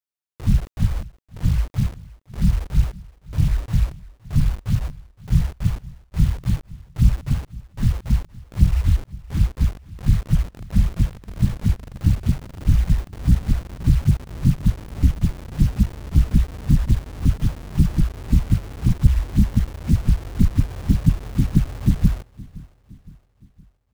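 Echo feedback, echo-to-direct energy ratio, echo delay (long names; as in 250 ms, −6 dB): 51%, −20.0 dB, 515 ms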